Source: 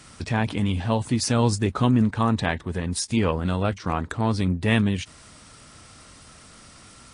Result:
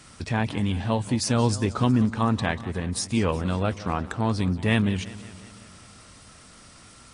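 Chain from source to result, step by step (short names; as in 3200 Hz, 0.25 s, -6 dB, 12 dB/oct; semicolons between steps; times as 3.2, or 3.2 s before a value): warbling echo 0.183 s, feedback 62%, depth 171 cents, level -17 dB; gain -1.5 dB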